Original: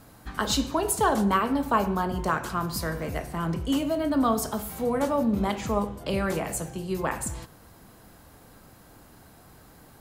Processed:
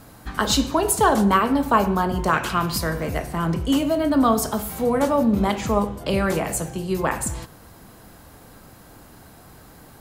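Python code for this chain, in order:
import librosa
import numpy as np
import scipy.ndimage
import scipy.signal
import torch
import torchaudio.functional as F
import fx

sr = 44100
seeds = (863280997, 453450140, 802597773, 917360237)

y = fx.peak_eq(x, sr, hz=2700.0, db=10.5, octaves=0.95, at=(2.33, 2.78))
y = F.gain(torch.from_numpy(y), 5.5).numpy()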